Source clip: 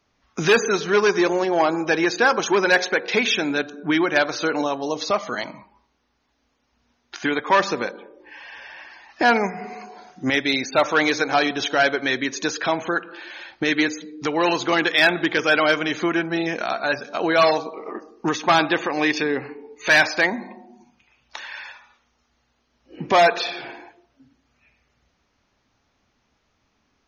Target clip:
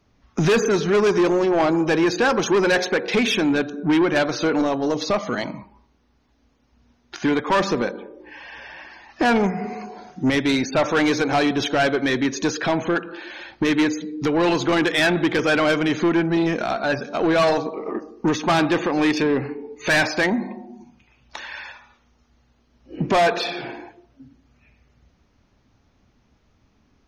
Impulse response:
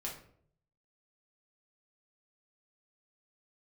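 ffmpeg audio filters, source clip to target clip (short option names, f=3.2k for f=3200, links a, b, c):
-af "lowshelf=f=400:g=12,asoftclip=type=tanh:threshold=-13.5dB"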